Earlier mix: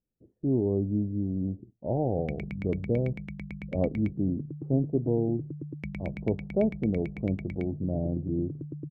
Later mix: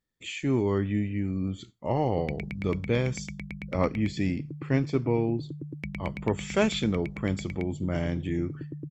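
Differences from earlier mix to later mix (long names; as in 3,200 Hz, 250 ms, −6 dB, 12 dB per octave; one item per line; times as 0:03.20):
speech: remove elliptic low-pass filter 710 Hz, stop band 70 dB
master: add high-shelf EQ 2,100 Hz +8.5 dB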